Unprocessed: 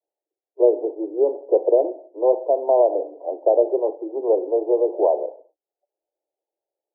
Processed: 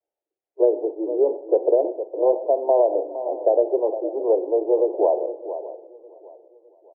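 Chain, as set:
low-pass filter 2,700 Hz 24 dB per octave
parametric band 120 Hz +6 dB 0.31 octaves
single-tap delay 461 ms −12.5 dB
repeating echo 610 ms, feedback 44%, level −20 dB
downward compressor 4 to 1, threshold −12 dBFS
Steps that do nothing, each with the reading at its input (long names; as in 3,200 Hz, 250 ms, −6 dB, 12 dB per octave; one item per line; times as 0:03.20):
low-pass filter 2,700 Hz: nothing at its input above 1,000 Hz
parametric band 120 Hz: nothing at its input below 250 Hz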